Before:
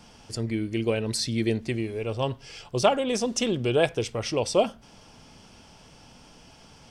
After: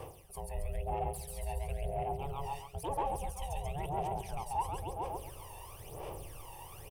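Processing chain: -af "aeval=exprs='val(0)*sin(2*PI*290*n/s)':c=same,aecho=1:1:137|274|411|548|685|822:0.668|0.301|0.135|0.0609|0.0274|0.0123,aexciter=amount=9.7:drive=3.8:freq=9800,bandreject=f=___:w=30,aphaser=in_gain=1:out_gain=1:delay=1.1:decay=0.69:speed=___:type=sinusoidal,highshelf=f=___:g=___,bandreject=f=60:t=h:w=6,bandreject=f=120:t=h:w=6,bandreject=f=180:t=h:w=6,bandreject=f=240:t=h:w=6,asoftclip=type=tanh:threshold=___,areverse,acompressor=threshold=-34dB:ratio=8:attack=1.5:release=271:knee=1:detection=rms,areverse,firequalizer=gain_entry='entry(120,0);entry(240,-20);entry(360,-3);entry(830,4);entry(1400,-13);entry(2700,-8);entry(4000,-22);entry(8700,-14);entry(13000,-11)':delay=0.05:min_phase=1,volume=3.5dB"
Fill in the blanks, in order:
5400, 0.99, 4100, 12, -12.5dB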